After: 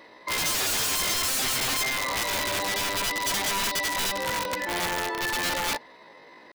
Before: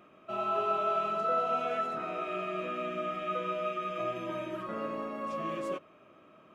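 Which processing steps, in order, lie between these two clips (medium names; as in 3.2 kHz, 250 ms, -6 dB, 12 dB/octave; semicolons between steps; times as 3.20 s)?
pitch shift +8 st; integer overflow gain 30 dB; trim +8.5 dB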